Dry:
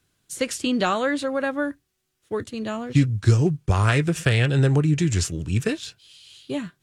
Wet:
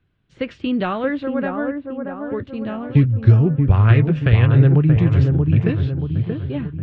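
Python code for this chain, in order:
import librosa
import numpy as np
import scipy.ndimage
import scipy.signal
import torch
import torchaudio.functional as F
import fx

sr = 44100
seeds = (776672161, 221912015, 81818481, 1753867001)

p1 = scipy.signal.sosfilt(scipy.signal.butter(4, 3100.0, 'lowpass', fs=sr, output='sos'), x)
p2 = fx.low_shelf(p1, sr, hz=230.0, db=10.0)
p3 = p2 + fx.echo_wet_lowpass(p2, sr, ms=630, feedback_pct=47, hz=1300.0, wet_db=-4.5, dry=0)
y = F.gain(torch.from_numpy(p3), -2.0).numpy()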